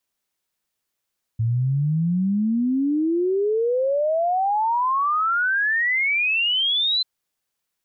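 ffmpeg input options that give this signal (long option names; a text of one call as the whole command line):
ffmpeg -f lavfi -i "aevalsrc='0.126*clip(min(t,5.64-t)/0.01,0,1)*sin(2*PI*110*5.64/log(4100/110)*(exp(log(4100/110)*t/5.64)-1))':duration=5.64:sample_rate=44100" out.wav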